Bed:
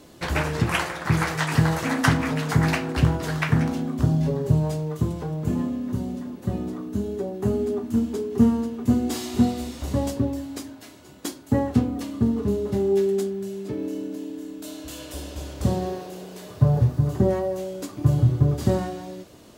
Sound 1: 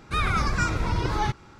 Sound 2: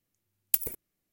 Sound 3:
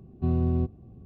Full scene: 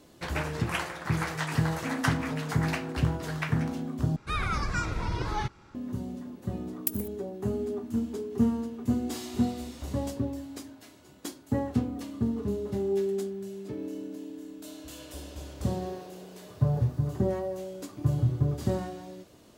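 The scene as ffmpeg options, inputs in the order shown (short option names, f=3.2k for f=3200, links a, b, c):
-filter_complex "[0:a]volume=-7dB,asplit=2[a][b];[a]atrim=end=4.164[c];[1:a]atrim=end=1.59,asetpts=PTS-STARTPTS,volume=-5.5dB[d];[b]atrim=start=5.746[e];[2:a]atrim=end=1.12,asetpts=PTS-STARTPTS,volume=-5dB,afade=t=in:d=0.004:c=hsin,afade=t=out:st=1.116:d=0.004:c=hsin,adelay=6330[f];[c][d]acrossfade=d=0.004:c1=hsin:c2=hsin[g];[g][e]acrossfade=d=0.004:c1=hsin:c2=hsin[h];[h][f]amix=inputs=2:normalize=0"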